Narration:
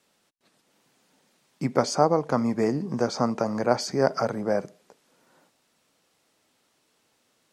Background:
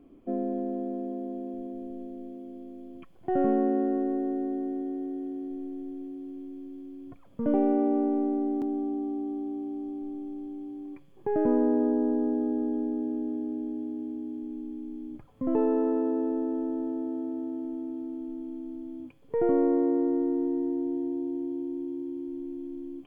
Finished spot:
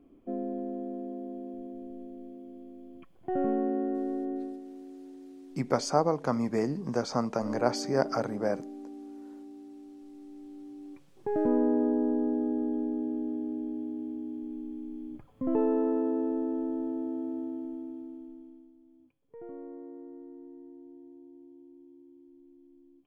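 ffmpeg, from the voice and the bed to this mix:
ffmpeg -i stem1.wav -i stem2.wav -filter_complex "[0:a]adelay=3950,volume=-4.5dB[link_01];[1:a]volume=7.5dB,afade=type=out:start_time=4.36:duration=0.25:silence=0.354813,afade=type=in:start_time=10.07:duration=1.5:silence=0.266073,afade=type=out:start_time=17.38:duration=1.35:silence=0.11885[link_02];[link_01][link_02]amix=inputs=2:normalize=0" out.wav

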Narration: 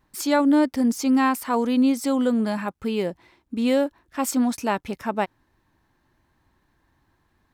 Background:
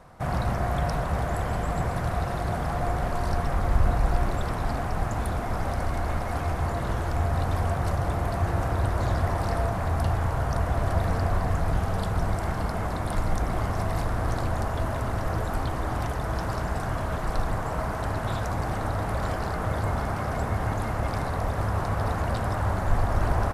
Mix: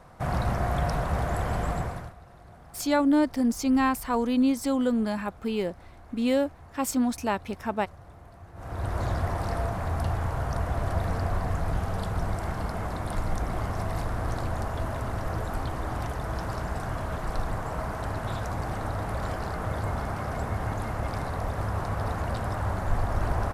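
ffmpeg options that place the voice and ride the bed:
ffmpeg -i stem1.wav -i stem2.wav -filter_complex "[0:a]adelay=2600,volume=-3.5dB[link_01];[1:a]volume=18.5dB,afade=type=out:start_time=1.68:duration=0.46:silence=0.0841395,afade=type=in:start_time=8.54:duration=0.43:silence=0.112202[link_02];[link_01][link_02]amix=inputs=2:normalize=0" out.wav

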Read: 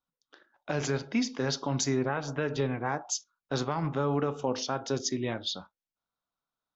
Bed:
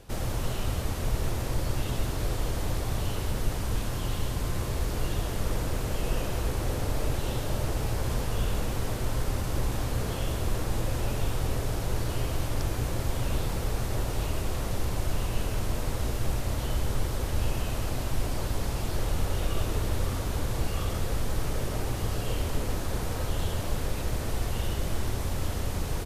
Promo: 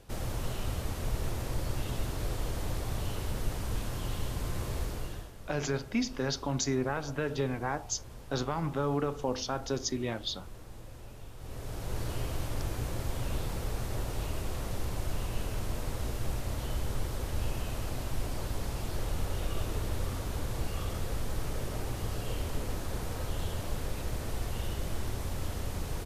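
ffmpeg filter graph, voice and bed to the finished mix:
ffmpeg -i stem1.wav -i stem2.wav -filter_complex "[0:a]adelay=4800,volume=-2dB[link_01];[1:a]volume=9dB,afade=type=out:start_time=4.79:duration=0.53:silence=0.199526,afade=type=in:start_time=11.37:duration=0.67:silence=0.211349[link_02];[link_01][link_02]amix=inputs=2:normalize=0" out.wav

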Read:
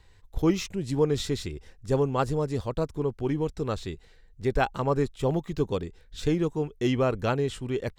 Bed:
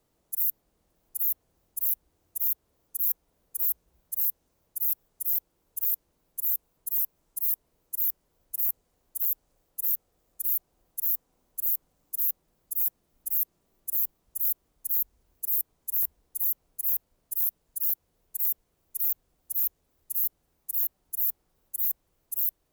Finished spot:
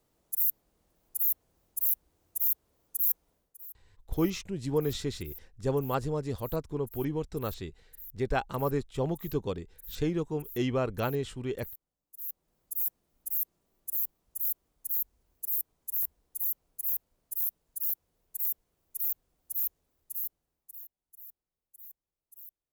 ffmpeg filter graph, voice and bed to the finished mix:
ffmpeg -i stem1.wav -i stem2.wav -filter_complex "[0:a]adelay=3750,volume=-4.5dB[link_01];[1:a]volume=15dB,afade=type=out:start_time=3.3:duration=0.26:silence=0.112202,afade=type=in:start_time=12.14:duration=0.42:silence=0.16788,afade=type=out:start_time=19.79:duration=1.08:silence=0.125893[link_02];[link_01][link_02]amix=inputs=2:normalize=0" out.wav

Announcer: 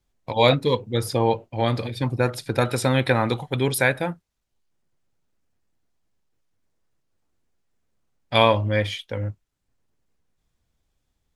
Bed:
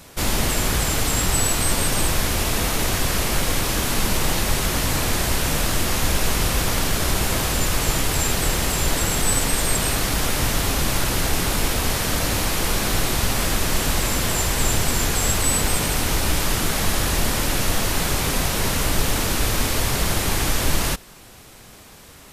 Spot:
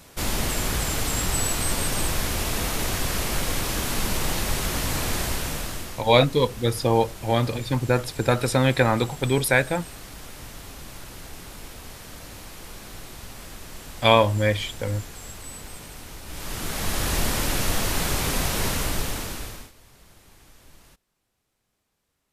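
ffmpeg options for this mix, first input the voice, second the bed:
ffmpeg -i stem1.wav -i stem2.wav -filter_complex "[0:a]adelay=5700,volume=0.5dB[link_01];[1:a]volume=11.5dB,afade=type=out:start_time=5.19:duration=0.84:silence=0.188365,afade=type=in:start_time=16.26:duration=0.89:silence=0.158489,afade=type=out:start_time=18.64:duration=1.08:silence=0.0375837[link_02];[link_01][link_02]amix=inputs=2:normalize=0" out.wav

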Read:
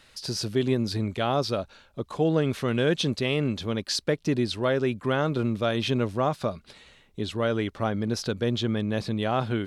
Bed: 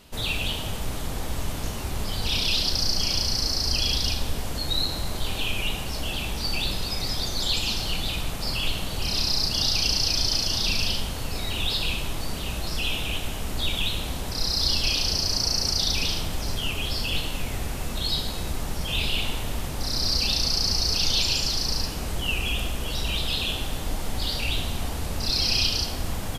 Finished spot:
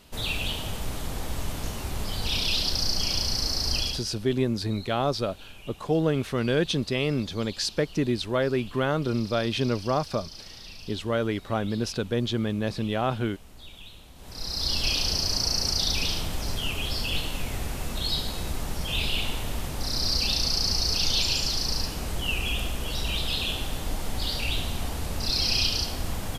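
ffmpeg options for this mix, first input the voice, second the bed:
ffmpeg -i stem1.wav -i stem2.wav -filter_complex "[0:a]adelay=3700,volume=-0.5dB[link_01];[1:a]volume=16dB,afade=type=out:start_time=3.78:duration=0.26:silence=0.133352,afade=type=in:start_time=14.15:duration=0.73:silence=0.125893[link_02];[link_01][link_02]amix=inputs=2:normalize=0" out.wav

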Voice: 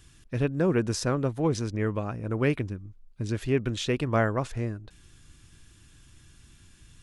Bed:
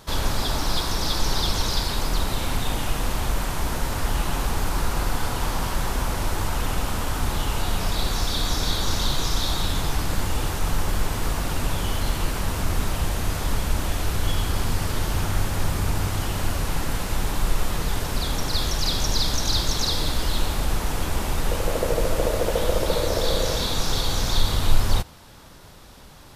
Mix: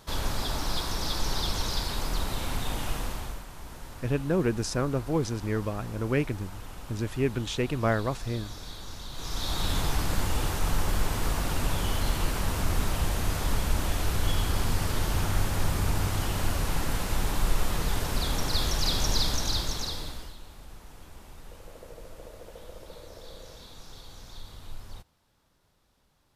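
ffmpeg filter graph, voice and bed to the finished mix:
ffmpeg -i stem1.wav -i stem2.wav -filter_complex "[0:a]adelay=3700,volume=-1.5dB[link_01];[1:a]volume=8.5dB,afade=type=out:start_time=2.93:duration=0.51:silence=0.266073,afade=type=in:start_time=9.11:duration=0.63:silence=0.188365,afade=type=out:start_time=19.16:duration=1.2:silence=0.1[link_02];[link_01][link_02]amix=inputs=2:normalize=0" out.wav

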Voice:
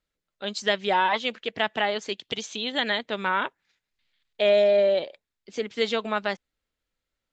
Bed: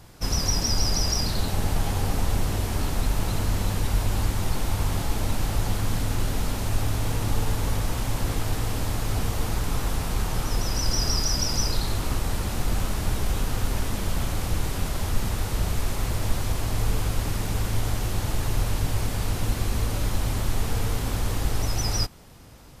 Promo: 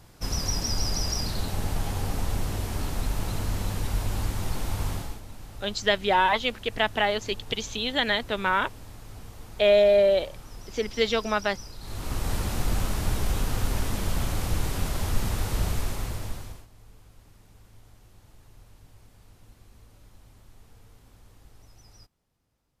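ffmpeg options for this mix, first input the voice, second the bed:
ffmpeg -i stem1.wav -i stem2.wav -filter_complex "[0:a]adelay=5200,volume=1dB[link_01];[1:a]volume=12.5dB,afade=type=out:start_time=4.89:duration=0.32:silence=0.211349,afade=type=in:start_time=11.79:duration=0.54:silence=0.149624,afade=type=out:start_time=15.65:duration=1.02:silence=0.0446684[link_02];[link_01][link_02]amix=inputs=2:normalize=0" out.wav

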